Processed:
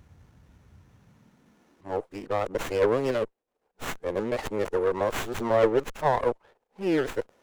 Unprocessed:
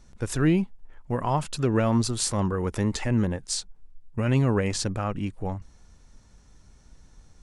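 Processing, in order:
played backwards from end to start
high-pass filter sweep 89 Hz → 480 Hz, 0:00.82–0:02.04
windowed peak hold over 9 samples

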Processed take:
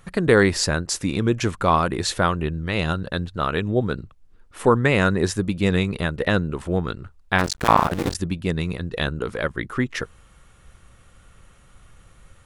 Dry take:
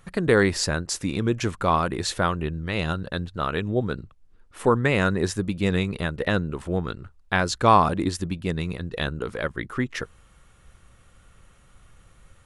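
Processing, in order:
0:07.38–0:08.15: sub-harmonics by changed cycles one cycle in 2, muted
level +3 dB

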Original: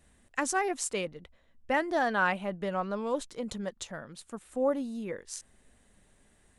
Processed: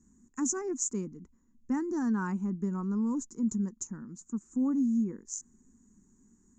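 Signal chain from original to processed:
drawn EQ curve 120 Hz 0 dB, 230 Hz +15 dB, 390 Hz +3 dB, 630 Hz −26 dB, 940 Hz −2 dB, 1,400 Hz −7 dB, 3,500 Hz −29 dB, 6,900 Hz +15 dB, 9,900 Hz −28 dB
level −4.5 dB

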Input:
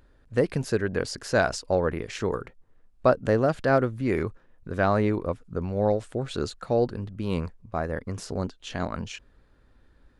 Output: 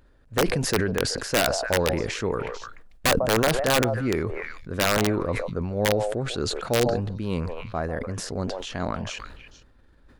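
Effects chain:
echo through a band-pass that steps 148 ms, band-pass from 690 Hz, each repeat 1.4 octaves, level −10 dB
wrap-around overflow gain 13.5 dB
level that may fall only so fast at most 37 dB per second

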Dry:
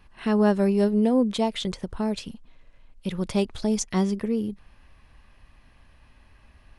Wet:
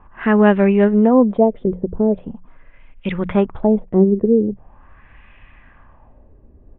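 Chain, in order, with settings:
mains-hum notches 60/120/180 Hz
downsampling to 8,000 Hz
auto-filter low-pass sine 0.42 Hz 400–2,400 Hz
level +7.5 dB

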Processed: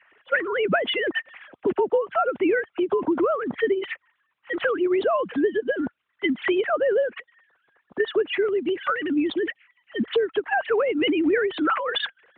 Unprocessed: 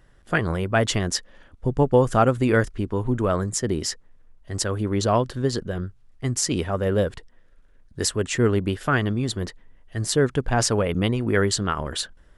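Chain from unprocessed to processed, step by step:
three sine waves on the formant tracks
parametric band 2,700 Hz +5 dB 2 octaves
downward compressor 12 to 1, threshold −27 dBFS, peak gain reduction 18 dB
0:08.28–0:10.30: auto-filter notch saw down 4.9 Hz 460–2,600 Hz
frequency shifter +24 Hz
level +8.5 dB
AMR narrowband 12.2 kbit/s 8,000 Hz

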